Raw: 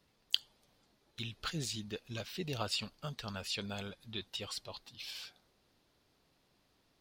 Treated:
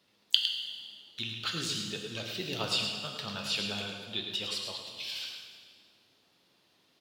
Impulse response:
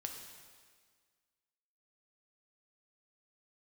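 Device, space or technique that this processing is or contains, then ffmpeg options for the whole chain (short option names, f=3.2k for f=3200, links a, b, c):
PA in a hall: -filter_complex "[0:a]highpass=140,equalizer=f=3.3k:t=o:w=1.1:g=6,aecho=1:1:107:0.422[a];[1:a]atrim=start_sample=2205[b];[a][b]afir=irnorm=-1:irlink=0,volume=4.5dB"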